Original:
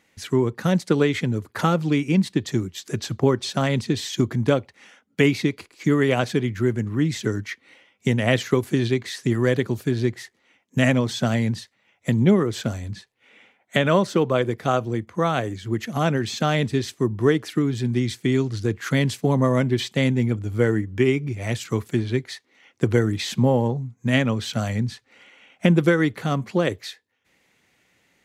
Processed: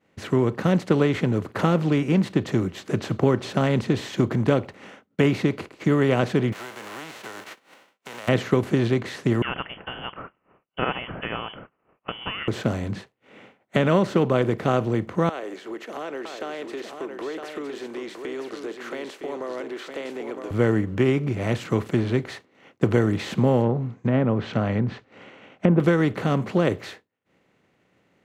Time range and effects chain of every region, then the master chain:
0:06.52–0:08.27: spectral envelope flattened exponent 0.3 + high-pass filter 710 Hz + downward compressor 16 to 1, threshold −37 dBFS
0:09.42–0:12.48: high-pass filter 1,000 Hz 6 dB per octave + voice inversion scrambler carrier 3,200 Hz
0:15.29–0:20.51: Butterworth high-pass 350 Hz + downward compressor 3 to 1, threshold −40 dBFS + single-tap delay 961 ms −8.5 dB
0:23.62–0:25.80: low-pass filter 5,300 Hz + treble cut that deepens with the level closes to 980 Hz, closed at −17.5 dBFS
whole clip: compressor on every frequency bin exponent 0.6; downward expander −30 dBFS; high-shelf EQ 2,100 Hz −9.5 dB; level −3 dB

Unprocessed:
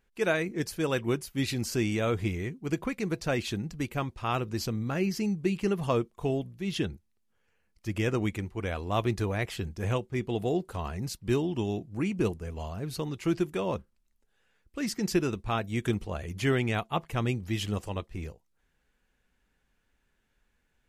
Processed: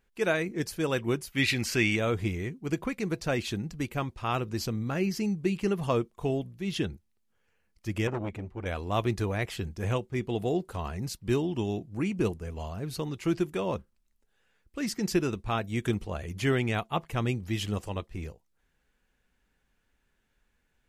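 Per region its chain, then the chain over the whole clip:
0:01.32–0:01.96: parametric band 2,200 Hz +12 dB 1.5 octaves + one half of a high-frequency compander encoder only
0:08.07–0:08.66: low-pass filter 2,000 Hz 6 dB per octave + saturating transformer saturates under 790 Hz
whole clip: no processing

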